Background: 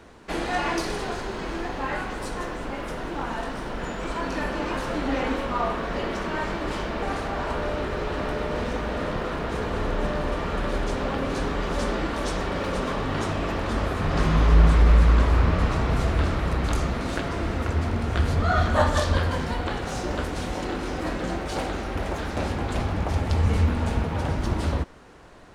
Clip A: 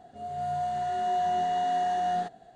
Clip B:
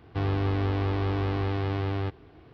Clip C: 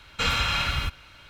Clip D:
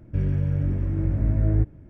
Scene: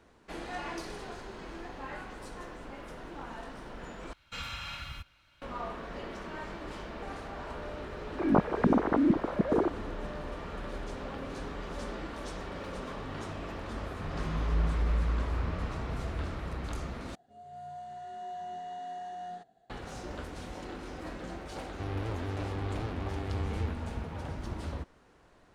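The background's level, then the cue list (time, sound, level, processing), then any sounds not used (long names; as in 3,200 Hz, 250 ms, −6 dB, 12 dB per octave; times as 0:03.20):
background −12.5 dB
0:04.13: overwrite with C −15 dB + notch filter 440 Hz, Q 6.2
0:08.05: mix in D −5 dB + three sine waves on the formant tracks
0:17.15: overwrite with A −13.5 dB
0:21.64: mix in B −9.5 dB + wow of a warped record 78 rpm, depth 250 cents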